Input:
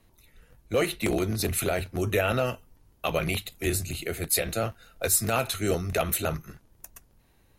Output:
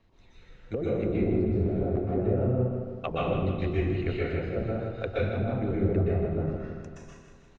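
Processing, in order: treble ducked by the level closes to 350 Hz, closed at -23.5 dBFS; Bessel low-pass 4000 Hz, order 8; on a send: feedback echo 0.159 s, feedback 58%, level -8.5 dB; on the sum: plate-style reverb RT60 0.97 s, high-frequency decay 0.85×, pre-delay 0.11 s, DRR -6 dB; gain -3 dB

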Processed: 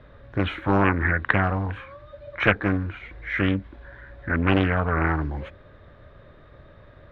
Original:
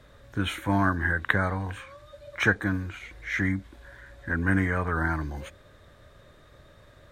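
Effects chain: air absorption 360 m; Doppler distortion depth 0.85 ms; gain +5.5 dB

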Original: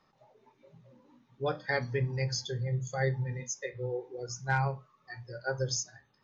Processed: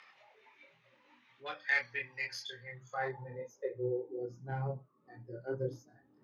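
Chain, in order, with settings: self-modulated delay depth 0.054 ms; in parallel at -2.5 dB: upward compressor, threshold -33 dBFS; on the sum: band-pass sweep 2300 Hz -> 290 Hz, 2.5–3.87; chorus voices 4, 0.61 Hz, delay 25 ms, depth 2.1 ms; gain +4 dB

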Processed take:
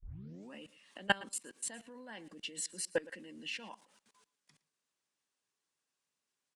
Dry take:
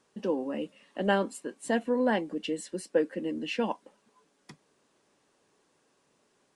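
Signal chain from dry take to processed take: tape start at the beginning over 0.53 s; low shelf 170 Hz -3.5 dB; level quantiser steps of 23 dB; passive tone stack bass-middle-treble 5-5-5; on a send: echo 0.114 s -20.5 dB; on the sum: gain +14.5 dB

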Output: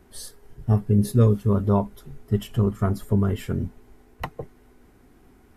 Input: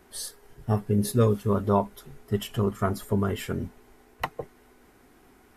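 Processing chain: low shelf 290 Hz +11.5 dB; gain -3.5 dB

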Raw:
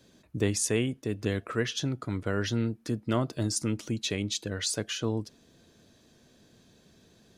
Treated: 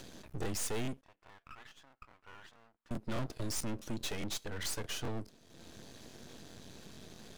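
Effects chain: upward compressor, threshold -38 dBFS; soft clip -29 dBFS, distortion -8 dB; 1.01–2.91 ladder band-pass 1300 Hz, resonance 40%; half-wave rectifier; crackling interface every 0.21 s, samples 1024, repeat, from 0.41; gain +1 dB

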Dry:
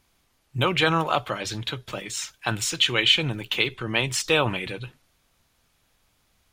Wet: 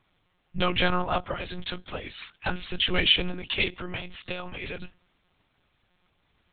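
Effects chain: 0.95–1.35 high shelf 2600 Hz -8.5 dB; 3.69–4.63 compressor 12:1, threshold -28 dBFS, peak gain reduction 13.5 dB; monotone LPC vocoder at 8 kHz 180 Hz; 2.65–3.07 tilt -1.5 dB/oct; gain -2 dB

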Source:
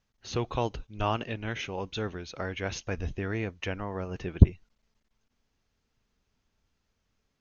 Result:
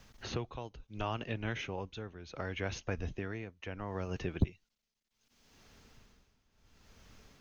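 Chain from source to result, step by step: tremolo 0.7 Hz, depth 87%; three-band squash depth 70%; gain -2.5 dB

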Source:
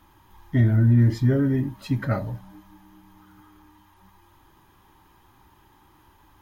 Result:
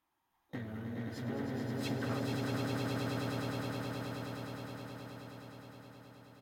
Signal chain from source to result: compressor 6:1, threshold -30 dBFS, peak gain reduction 15 dB; harmoniser -3 st -5 dB, +12 st -12 dB; echo 0.445 s -7 dB; one-sided clip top -30.5 dBFS; low shelf 260 Hz -10 dB; gate with hold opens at -36 dBFS; low shelf 66 Hz -10.5 dB; swelling echo 0.105 s, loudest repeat 8, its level -5 dB; gain -3 dB

